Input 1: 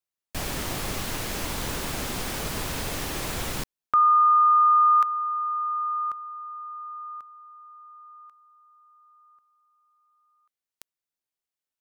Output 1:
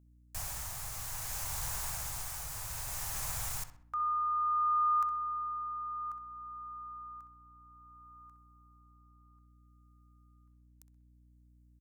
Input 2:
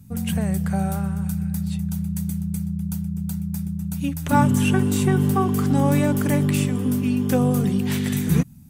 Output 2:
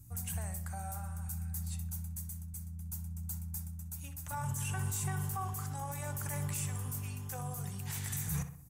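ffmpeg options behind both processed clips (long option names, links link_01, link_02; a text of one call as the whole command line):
ffmpeg -i in.wav -filter_complex "[0:a]firequalizer=gain_entry='entry(120,0);entry(230,-25);entry(780,-1);entry(3200,-7);entry(6700,6)':delay=0.05:min_phase=1,alimiter=limit=-19.5dB:level=0:latency=1:release=15,tremolo=f=0.6:d=0.39,aeval=exprs='val(0)+0.002*(sin(2*PI*60*n/s)+sin(2*PI*2*60*n/s)/2+sin(2*PI*3*60*n/s)/3+sin(2*PI*4*60*n/s)/4+sin(2*PI*5*60*n/s)/5)':channel_layout=same,asplit=2[link_01][link_02];[link_02]adelay=64,lowpass=frequency=3000:poles=1,volume=-9.5dB,asplit=2[link_03][link_04];[link_04]adelay=64,lowpass=frequency=3000:poles=1,volume=0.47,asplit=2[link_05][link_06];[link_06]adelay=64,lowpass=frequency=3000:poles=1,volume=0.47,asplit=2[link_07][link_08];[link_08]adelay=64,lowpass=frequency=3000:poles=1,volume=0.47,asplit=2[link_09][link_10];[link_10]adelay=64,lowpass=frequency=3000:poles=1,volume=0.47[link_11];[link_03][link_05][link_07][link_09][link_11]amix=inputs=5:normalize=0[link_12];[link_01][link_12]amix=inputs=2:normalize=0,volume=-7dB" out.wav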